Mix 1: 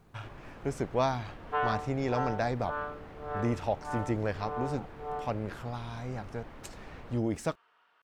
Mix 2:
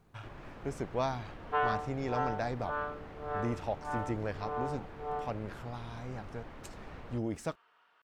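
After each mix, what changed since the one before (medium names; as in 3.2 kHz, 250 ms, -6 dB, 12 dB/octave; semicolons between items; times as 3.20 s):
speech -4.5 dB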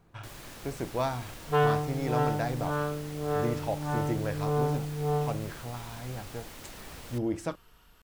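first sound: remove low-pass 1.6 kHz 12 dB/octave; second sound: remove band-pass 760–2000 Hz; reverb: on, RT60 0.35 s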